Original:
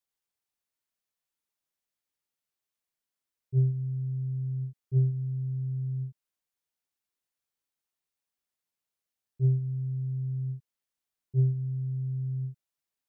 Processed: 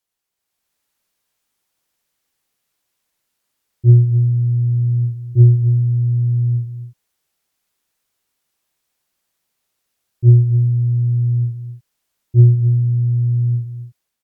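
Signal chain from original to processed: level rider gain up to 8 dB; speed mistake 48 kHz file played as 44.1 kHz; echo from a far wall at 46 m, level -12 dB; trim +7 dB

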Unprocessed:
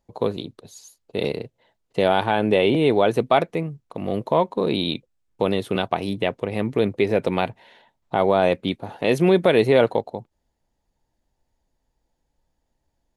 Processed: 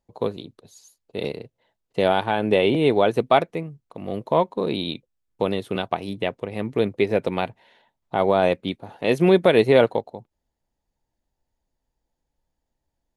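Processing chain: upward expansion 1.5:1, over -27 dBFS; trim +1.5 dB

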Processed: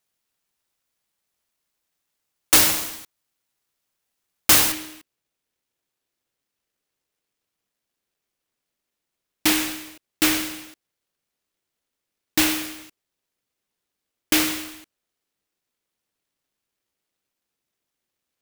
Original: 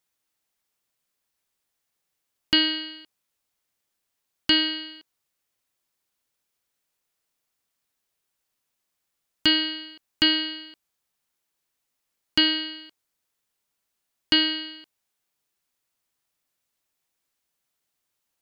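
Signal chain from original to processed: peaking EQ 3.4 kHz +10.5 dB 2.8 oct, from 4.72 s 510 Hz; delay time shaken by noise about 2.4 kHz, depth 0.38 ms; trim -3.5 dB

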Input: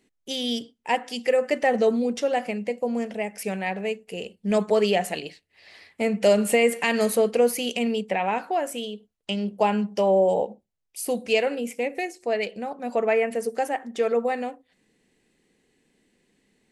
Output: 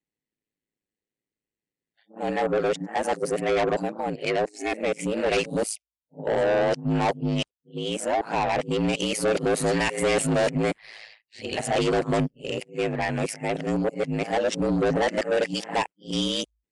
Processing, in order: reverse the whole clip; spectral noise reduction 30 dB; ring modulator 54 Hz; saturation -26 dBFS, distortion -7 dB; resampled via 22.05 kHz; trim +7.5 dB

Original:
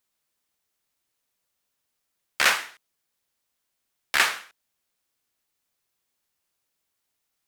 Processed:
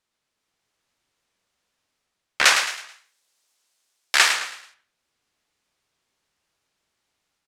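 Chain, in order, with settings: 2.45–4.31 s: tone controls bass -14 dB, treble +11 dB; level rider gain up to 4 dB; distance through air 62 m; frequency-shifting echo 108 ms, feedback 36%, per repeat +38 Hz, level -7.5 dB; warped record 78 rpm, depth 100 cents; trim +3 dB

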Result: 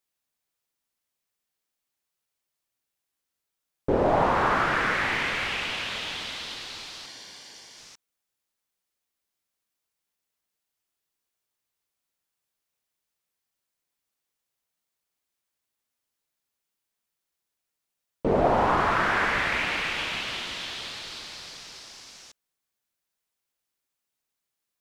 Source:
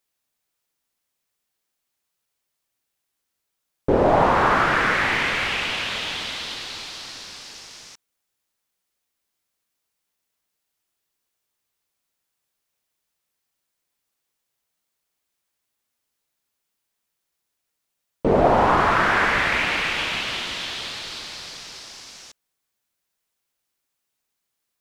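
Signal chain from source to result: 7.06–7.78 s: comb of notches 1.3 kHz; trim -5 dB

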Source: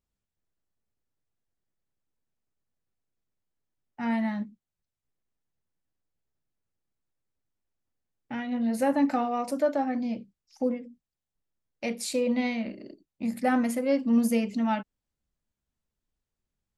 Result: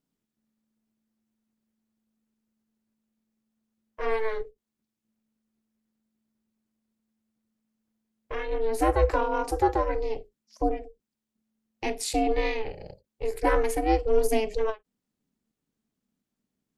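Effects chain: ring modulator 220 Hz; endings held to a fixed fall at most 380 dB/s; trim +5 dB

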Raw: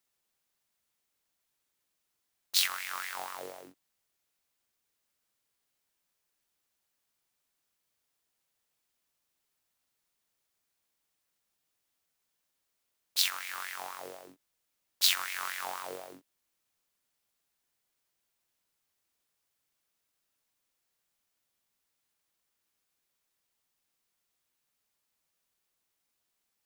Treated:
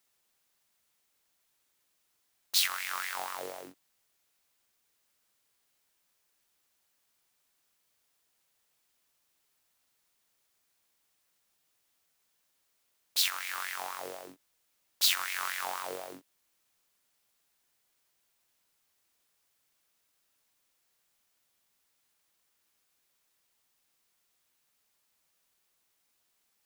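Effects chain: bass shelf 400 Hz -3 dB; in parallel at -0.5 dB: compression, threshold -43 dBFS, peak gain reduction 21.5 dB; on the sum: hard clipper -16.5 dBFS, distortion -14 dB

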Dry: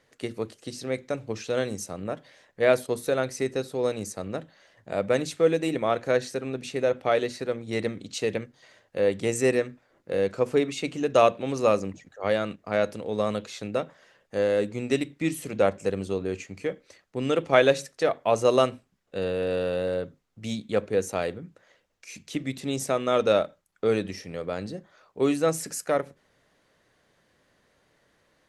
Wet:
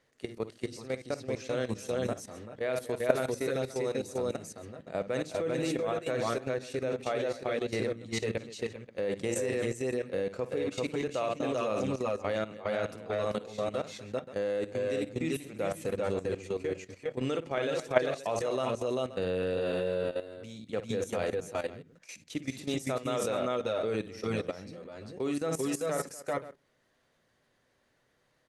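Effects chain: multi-tap echo 55/242/391/399/408/527 ms -9/-16.5/-3.5/-4.5/-18.5/-16 dB; level held to a coarse grid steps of 14 dB; trim -2.5 dB

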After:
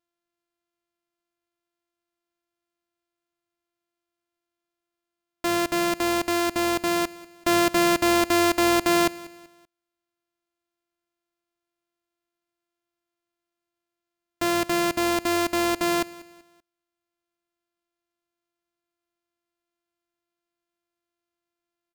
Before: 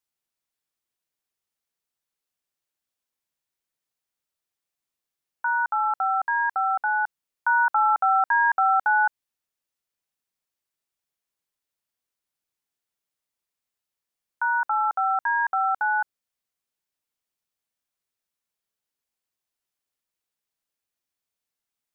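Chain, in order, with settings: sorted samples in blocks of 128 samples; feedback delay 192 ms, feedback 38%, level -20 dB

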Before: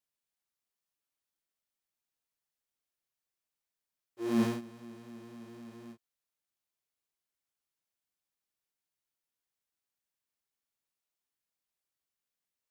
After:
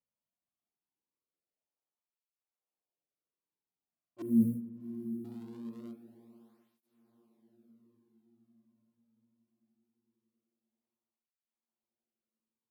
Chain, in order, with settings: local Wiener filter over 25 samples; 4.22–5.25 s: inverse Chebyshev band-stop 700–6500 Hz, stop band 40 dB; echo that smears into a reverb 768 ms, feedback 49%, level -14 dB; spring tank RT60 1.8 s, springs 38 ms, chirp 60 ms, DRR 11.5 dB; cancelling through-zero flanger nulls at 0.22 Hz, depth 2.8 ms; trim +4 dB

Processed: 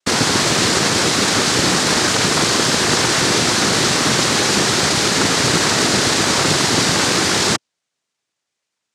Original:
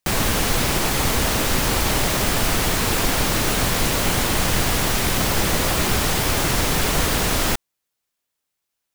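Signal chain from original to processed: noise-vocoded speech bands 3; dynamic bell 4.4 kHz, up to +5 dB, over -41 dBFS, Q 1.6; trim +5.5 dB

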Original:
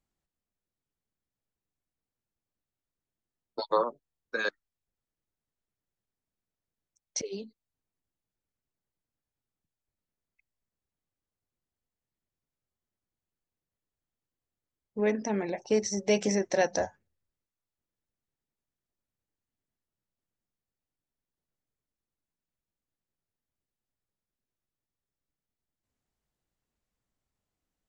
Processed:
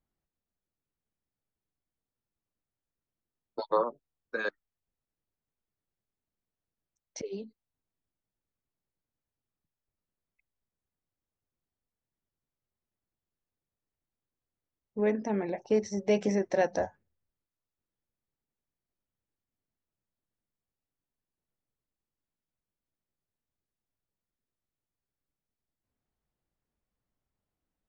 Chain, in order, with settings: low-pass 1.7 kHz 6 dB/octave

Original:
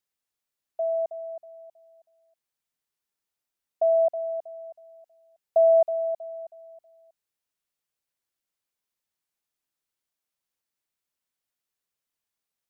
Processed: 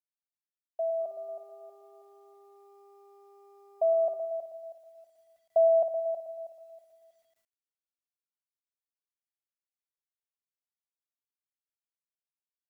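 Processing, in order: 0.99–4.15 s: mains buzz 400 Hz, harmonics 3, -58 dBFS -6 dB/octave; feedback delay 115 ms, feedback 52%, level -9 dB; bit crusher 12-bit; trim -3.5 dB

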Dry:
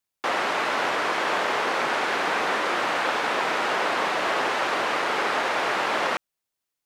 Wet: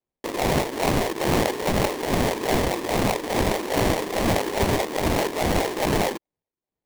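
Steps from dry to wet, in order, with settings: LFO low-pass sine 2.4 Hz 330–1700 Hz; sample-rate reducer 1.4 kHz, jitter 20%

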